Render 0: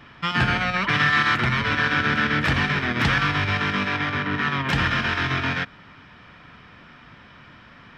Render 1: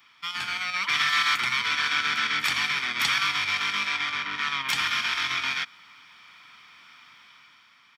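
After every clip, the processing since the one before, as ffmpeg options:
ffmpeg -i in.wav -af "aderivative,aecho=1:1:0.9:0.45,dynaudnorm=framelen=160:gausssize=9:maxgain=6.5dB,volume=2dB" out.wav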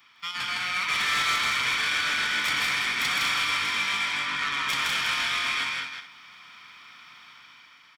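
ffmpeg -i in.wav -filter_complex "[0:a]asplit=2[link_01][link_02];[link_02]aecho=0:1:200:0.473[link_03];[link_01][link_03]amix=inputs=2:normalize=0,asoftclip=type=tanh:threshold=-22.5dB,asplit=2[link_04][link_05];[link_05]aecho=0:1:160.3|224.5:0.708|0.251[link_06];[link_04][link_06]amix=inputs=2:normalize=0" out.wav

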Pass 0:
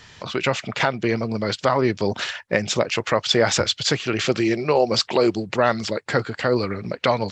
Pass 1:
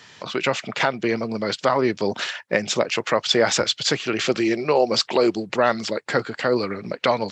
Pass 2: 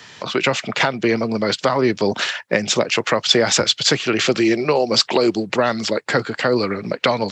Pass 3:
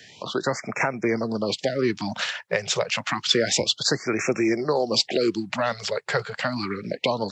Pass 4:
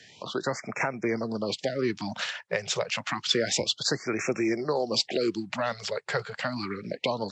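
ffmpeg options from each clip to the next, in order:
ffmpeg -i in.wav -af "highpass=170" out.wav
ffmpeg -i in.wav -filter_complex "[0:a]acrossover=split=260|3000[link_01][link_02][link_03];[link_02]acompressor=threshold=-20dB:ratio=6[link_04];[link_01][link_04][link_03]amix=inputs=3:normalize=0,volume=5.5dB" out.wav
ffmpeg -i in.wav -af "afftfilt=real='re*(1-between(b*sr/1024,250*pow(3800/250,0.5+0.5*sin(2*PI*0.29*pts/sr))/1.41,250*pow(3800/250,0.5+0.5*sin(2*PI*0.29*pts/sr))*1.41))':imag='im*(1-between(b*sr/1024,250*pow(3800/250,0.5+0.5*sin(2*PI*0.29*pts/sr))/1.41,250*pow(3800/250,0.5+0.5*sin(2*PI*0.29*pts/sr))*1.41))':win_size=1024:overlap=0.75,volume=-5.5dB" out.wav
ffmpeg -i in.wav -af "aresample=22050,aresample=44100,volume=-4.5dB" out.wav

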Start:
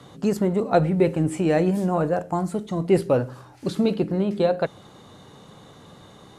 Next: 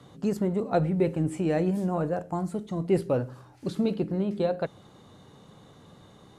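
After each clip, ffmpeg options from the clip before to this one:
ffmpeg -i in.wav -af "lowshelf=frequency=390:gain=4,volume=-7.5dB" out.wav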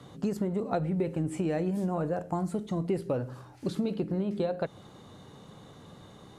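ffmpeg -i in.wav -af "acompressor=threshold=-28dB:ratio=6,volume=2dB" out.wav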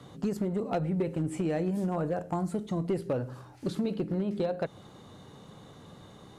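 ffmpeg -i in.wav -af "asoftclip=type=hard:threshold=-22.5dB" out.wav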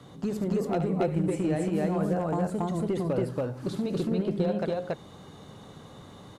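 ffmpeg -i in.wav -af "aecho=1:1:72.89|279.9:0.355|1" out.wav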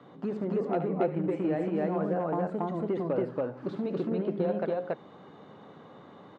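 ffmpeg -i in.wav -af "highpass=220,lowpass=2100" out.wav

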